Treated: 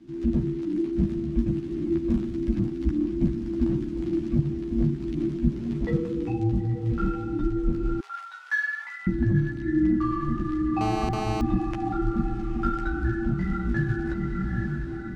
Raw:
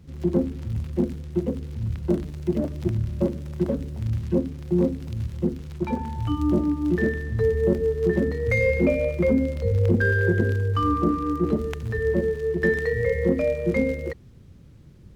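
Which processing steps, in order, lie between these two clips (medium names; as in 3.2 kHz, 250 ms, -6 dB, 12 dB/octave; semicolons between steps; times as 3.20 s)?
distance through air 59 m; echo that smears into a reverb 863 ms, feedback 45%, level -7.5 dB; chorus voices 4, 1.2 Hz, delay 13 ms, depth 3 ms; 8.00–9.07 s: steep high-pass 1.3 kHz 48 dB/octave; gain riding within 4 dB 0.5 s; frequency shift -410 Hz; 10.81–11.41 s: mobile phone buzz -32 dBFS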